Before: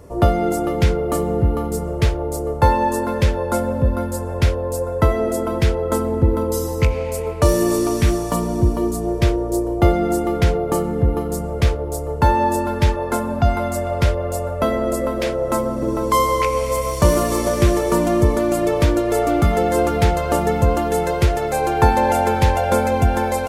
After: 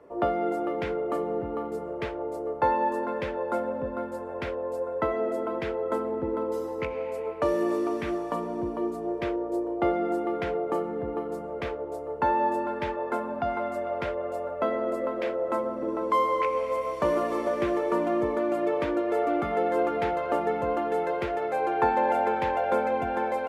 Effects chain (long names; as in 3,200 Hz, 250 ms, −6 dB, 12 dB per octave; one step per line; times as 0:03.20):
three-way crossover with the lows and the highs turned down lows −22 dB, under 240 Hz, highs −21 dB, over 2,900 Hz
level −6.5 dB